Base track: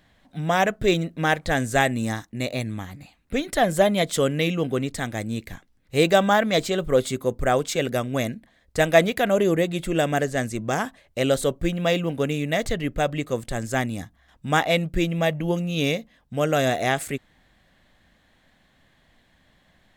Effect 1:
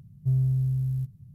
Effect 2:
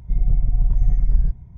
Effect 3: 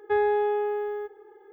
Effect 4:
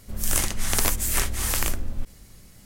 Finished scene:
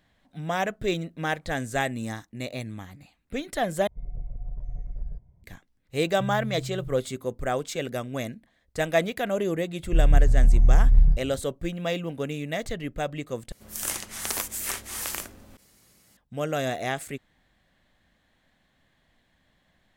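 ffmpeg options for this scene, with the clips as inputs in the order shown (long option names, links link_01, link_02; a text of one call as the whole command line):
ffmpeg -i bed.wav -i cue0.wav -i cue1.wav -i cue2.wav -i cue3.wav -filter_complex "[2:a]asplit=2[link_01][link_02];[0:a]volume=-6.5dB[link_03];[link_01]equalizer=frequency=550:width_type=o:width=0.82:gain=12[link_04];[link_02]asplit=2[link_05][link_06];[link_06]adelay=28,volume=-4dB[link_07];[link_05][link_07]amix=inputs=2:normalize=0[link_08];[4:a]highpass=frequency=320:poles=1[link_09];[link_03]asplit=3[link_10][link_11][link_12];[link_10]atrim=end=3.874[link_13];[link_04]atrim=end=1.57,asetpts=PTS-STARTPTS,volume=-17dB[link_14];[link_11]atrim=start=5.436:end=13.524[link_15];[link_09]atrim=end=2.65,asetpts=PTS-STARTPTS,volume=-5.5dB[link_16];[link_12]atrim=start=16.166[link_17];[1:a]atrim=end=1.34,asetpts=PTS-STARTPTS,volume=-10dB,afade=type=in:duration=0.004:curve=hsin,afade=type=out:start_time=1.336:duration=0.004:curve=hsin,adelay=5940[link_18];[link_08]atrim=end=1.57,asetpts=PTS-STARTPTS,volume=-2dB,afade=type=in:duration=0.004:curve=hsin,afade=type=out:start_time=1.566:duration=0.004:curve=hsin,adelay=9830[link_19];[link_13][link_14]acrossfade=duration=0.004:curve1=hsin:curve2=hsin[link_20];[link_20][link_15]acrossfade=duration=0.004:curve1=hsin:curve2=hsin[link_21];[link_21][link_16]acrossfade=duration=0.004:curve1=hsin:curve2=hsin[link_22];[link_22][link_17]acrossfade=duration=0.004:curve1=hsin:curve2=hsin[link_23];[link_23][link_18][link_19]amix=inputs=3:normalize=0" out.wav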